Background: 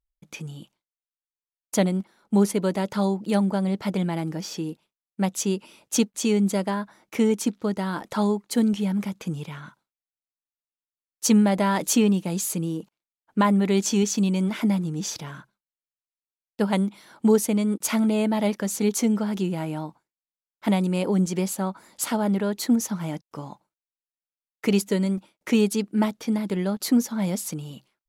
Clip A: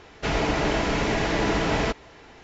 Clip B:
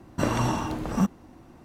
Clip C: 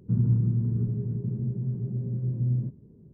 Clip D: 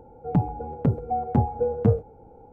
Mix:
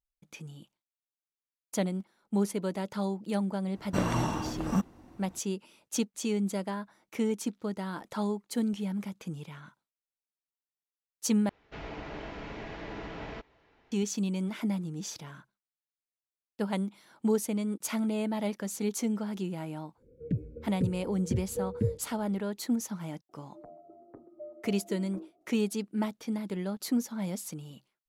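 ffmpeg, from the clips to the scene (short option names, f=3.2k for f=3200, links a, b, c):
-filter_complex "[4:a]asplit=2[a][b];[0:a]volume=-8.5dB[c];[1:a]lowpass=3.8k[d];[a]asuperstop=centerf=950:order=12:qfactor=0.91[e];[b]highpass=f=430:t=q:w=0.5412,highpass=f=430:t=q:w=1.307,lowpass=f=2k:t=q:w=0.5176,lowpass=f=2k:t=q:w=0.7071,lowpass=f=2k:t=q:w=1.932,afreqshift=-140[f];[c]asplit=2[g][h];[g]atrim=end=11.494[i];[d]atrim=end=2.43,asetpts=PTS-STARTPTS,volume=-17dB[j];[h]atrim=start=13.916[k];[2:a]atrim=end=1.64,asetpts=PTS-STARTPTS,volume=-4.5dB,afade=t=in:d=0.004:c=hsin,afade=t=out:st=1.636:d=0.004:c=hsin,adelay=3750[l];[e]atrim=end=2.52,asetpts=PTS-STARTPTS,volume=-9dB,afade=t=in:d=0.1,afade=t=out:st=2.42:d=0.1,adelay=19960[m];[f]atrim=end=2.52,asetpts=PTS-STARTPTS,volume=-17.5dB,afade=t=in:d=0.004:c=hsin,afade=t=out:st=2.516:d=0.004:c=hsin,adelay=23290[n];[i][j]acrossfade=d=0.004:c1=hsin:c2=hsin[o];[o][k]acrossfade=d=0.004:c1=hsin:c2=hsin[p];[p][l][m][n]amix=inputs=4:normalize=0"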